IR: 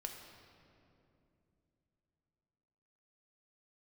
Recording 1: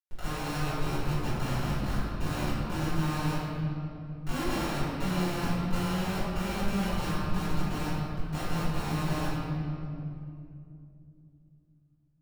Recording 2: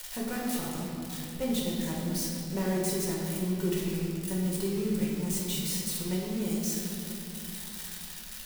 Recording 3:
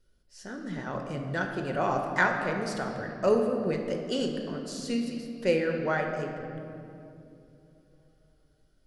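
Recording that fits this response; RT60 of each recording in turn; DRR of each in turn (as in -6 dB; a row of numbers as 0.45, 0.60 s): 3; 2.7, 2.7, 2.8 s; -14.5, -5.0, 2.5 dB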